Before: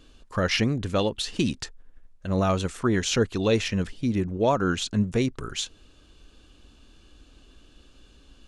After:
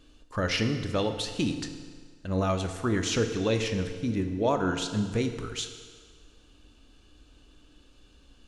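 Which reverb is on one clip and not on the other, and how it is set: FDN reverb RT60 1.8 s, low-frequency decay 0.8×, high-frequency decay 0.85×, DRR 6 dB; gain -4 dB

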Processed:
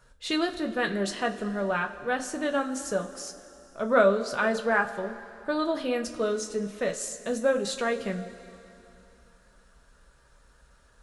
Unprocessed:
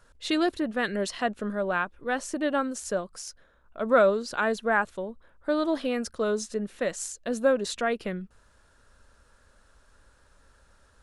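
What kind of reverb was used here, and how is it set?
two-slope reverb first 0.2 s, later 3 s, from -20 dB, DRR 2.5 dB; gain -1.5 dB

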